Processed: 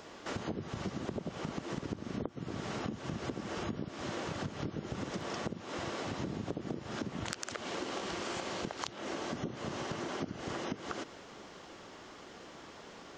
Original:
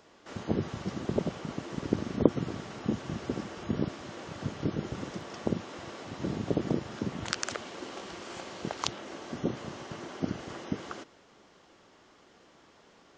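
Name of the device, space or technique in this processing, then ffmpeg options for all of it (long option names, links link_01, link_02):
serial compression, peaks first: -af "acompressor=threshold=-39dB:ratio=4,acompressor=threshold=-44dB:ratio=3,volume=8.5dB"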